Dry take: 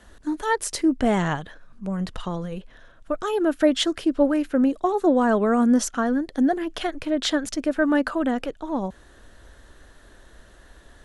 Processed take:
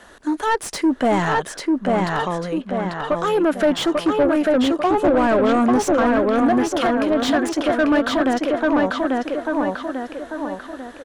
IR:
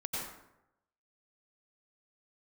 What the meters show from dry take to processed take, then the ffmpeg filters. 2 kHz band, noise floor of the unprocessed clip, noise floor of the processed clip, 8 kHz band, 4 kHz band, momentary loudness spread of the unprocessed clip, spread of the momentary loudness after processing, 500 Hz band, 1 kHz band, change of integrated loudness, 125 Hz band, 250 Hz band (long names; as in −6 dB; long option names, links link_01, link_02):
+6.5 dB, −51 dBFS, −40 dBFS, 0.0 dB, +2.5 dB, 12 LU, 9 LU, +6.0 dB, +7.5 dB, +3.5 dB, +3.0 dB, +3.5 dB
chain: -filter_complex "[0:a]asplit=2[link_01][link_02];[link_02]adelay=843,lowpass=frequency=3900:poles=1,volume=-3dB,asplit=2[link_03][link_04];[link_04]adelay=843,lowpass=frequency=3900:poles=1,volume=0.44,asplit=2[link_05][link_06];[link_06]adelay=843,lowpass=frequency=3900:poles=1,volume=0.44,asplit=2[link_07][link_08];[link_08]adelay=843,lowpass=frequency=3900:poles=1,volume=0.44,asplit=2[link_09][link_10];[link_10]adelay=843,lowpass=frequency=3900:poles=1,volume=0.44,asplit=2[link_11][link_12];[link_12]adelay=843,lowpass=frequency=3900:poles=1,volume=0.44[link_13];[link_01][link_03][link_05][link_07][link_09][link_11][link_13]amix=inputs=7:normalize=0,crystalizer=i=2:c=0,asplit=2[link_14][link_15];[link_15]highpass=frequency=720:poles=1,volume=25dB,asoftclip=type=tanh:threshold=-1dB[link_16];[link_14][link_16]amix=inputs=2:normalize=0,lowpass=frequency=1100:poles=1,volume=-6dB,volume=-5.5dB"